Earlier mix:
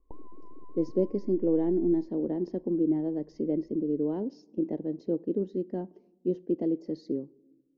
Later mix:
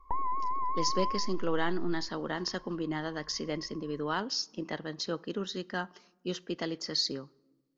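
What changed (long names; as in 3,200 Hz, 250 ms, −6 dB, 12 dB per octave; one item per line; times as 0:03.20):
background +7.5 dB
master: remove drawn EQ curve 140 Hz 0 dB, 320 Hz +10 dB, 570 Hz +1 dB, 880 Hz −11 dB, 1,300 Hz −30 dB, 2,200 Hz −21 dB, 3,400 Hz −29 dB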